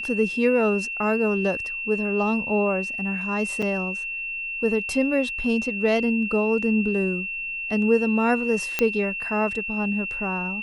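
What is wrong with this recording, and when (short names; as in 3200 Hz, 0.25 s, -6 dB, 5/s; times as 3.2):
tone 2700 Hz -28 dBFS
3.62 gap 5 ms
8.79 pop -6 dBFS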